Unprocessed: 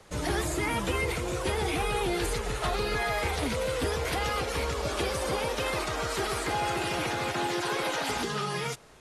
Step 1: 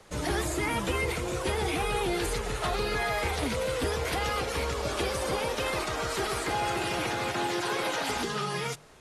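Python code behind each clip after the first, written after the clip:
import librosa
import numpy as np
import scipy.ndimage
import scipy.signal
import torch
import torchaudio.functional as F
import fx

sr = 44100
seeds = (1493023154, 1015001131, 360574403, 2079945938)

y = fx.hum_notches(x, sr, base_hz=50, count=3)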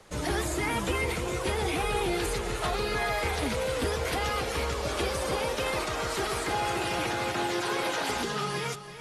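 y = x + 10.0 ** (-12.0 / 20.0) * np.pad(x, (int(334 * sr / 1000.0), 0))[:len(x)]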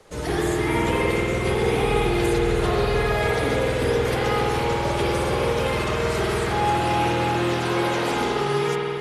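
y = fx.peak_eq(x, sr, hz=430.0, db=6.0, octaves=0.6)
y = fx.rev_spring(y, sr, rt60_s=2.6, pass_ms=(49,), chirp_ms=35, drr_db=-3.5)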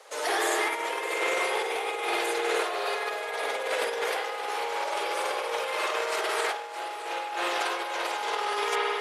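y = scipy.signal.sosfilt(scipy.signal.butter(4, 530.0, 'highpass', fs=sr, output='sos'), x)
y = fx.over_compress(y, sr, threshold_db=-29.0, ratio=-0.5)
y = y + 10.0 ** (-13.0 / 20.0) * np.pad(y, (int(616 * sr / 1000.0), 0))[:len(y)]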